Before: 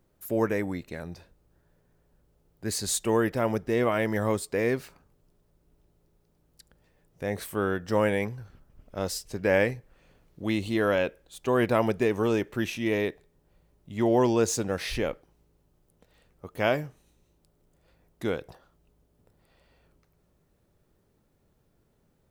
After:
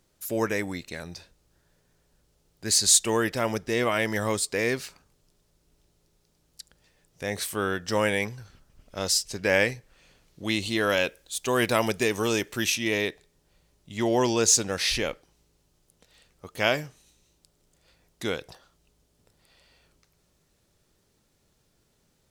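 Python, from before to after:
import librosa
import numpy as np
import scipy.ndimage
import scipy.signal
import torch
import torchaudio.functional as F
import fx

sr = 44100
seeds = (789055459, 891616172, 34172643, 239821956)

y = fx.high_shelf(x, sr, hz=6800.0, db=8.5, at=(10.89, 12.76))
y = fx.peak_eq(y, sr, hz=5700.0, db=14.0, octaves=2.8)
y = y * librosa.db_to_amplitude(-2.0)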